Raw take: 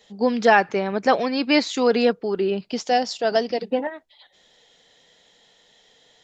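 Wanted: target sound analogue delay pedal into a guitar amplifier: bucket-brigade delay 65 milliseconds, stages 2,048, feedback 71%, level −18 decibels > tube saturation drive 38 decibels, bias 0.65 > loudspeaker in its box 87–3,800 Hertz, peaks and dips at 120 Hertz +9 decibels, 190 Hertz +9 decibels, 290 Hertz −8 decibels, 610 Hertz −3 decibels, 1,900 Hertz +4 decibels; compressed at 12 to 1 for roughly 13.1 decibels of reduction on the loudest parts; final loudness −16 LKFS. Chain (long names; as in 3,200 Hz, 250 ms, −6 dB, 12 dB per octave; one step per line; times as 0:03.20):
downward compressor 12 to 1, threshold −24 dBFS
bucket-brigade delay 65 ms, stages 2,048, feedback 71%, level −18 dB
tube saturation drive 38 dB, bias 0.65
loudspeaker in its box 87–3,800 Hz, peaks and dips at 120 Hz +9 dB, 190 Hz +9 dB, 290 Hz −8 dB, 610 Hz −3 dB, 1,900 Hz +4 dB
level +24.5 dB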